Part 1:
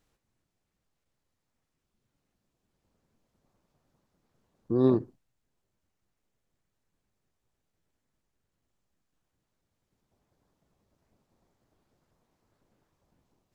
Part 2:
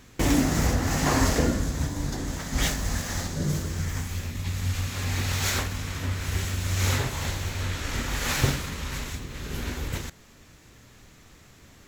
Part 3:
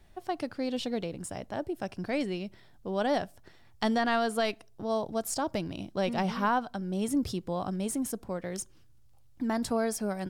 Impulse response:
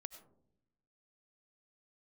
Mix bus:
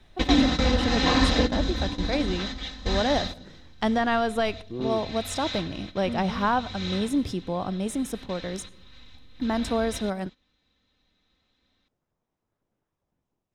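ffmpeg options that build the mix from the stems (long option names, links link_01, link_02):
-filter_complex "[0:a]volume=-8dB[link_01];[1:a]lowpass=frequency=4000:width_type=q:width=8.3,aecho=1:1:3.9:1,volume=10dB,afade=type=out:start_time=3.01:duration=0.75:silence=0.266073,afade=type=out:start_time=7.01:duration=0.21:silence=0.375837,afade=type=in:start_time=8.51:duration=0.53:silence=0.237137[link_02];[2:a]volume=1.5dB,asplit=3[link_03][link_04][link_05];[link_04]volume=-6.5dB[link_06];[link_05]apad=whole_len=524011[link_07];[link_02][link_07]sidechaingate=range=-14dB:threshold=-40dB:ratio=16:detection=peak[link_08];[3:a]atrim=start_sample=2205[link_09];[link_06][link_09]afir=irnorm=-1:irlink=0[link_10];[link_01][link_08][link_03][link_10]amix=inputs=4:normalize=0,highshelf=frequency=8800:gain=-11.5,bandreject=frequency=4400:width=7.2"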